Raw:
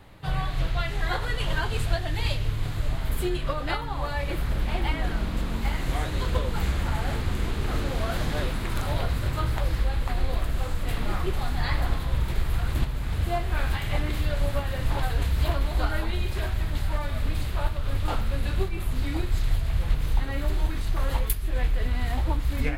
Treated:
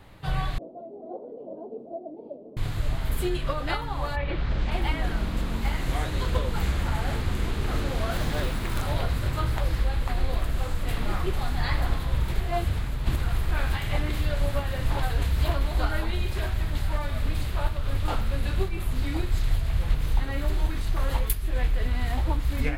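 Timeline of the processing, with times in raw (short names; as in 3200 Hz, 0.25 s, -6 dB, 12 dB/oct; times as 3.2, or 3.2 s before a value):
0.58–2.57 elliptic band-pass 230–650 Hz, stop band 50 dB
4.15–4.7 LPF 2900 Hz -> 7700 Hz 24 dB/oct
8.11–8.83 companded quantiser 6-bit
12.4–13.51 reverse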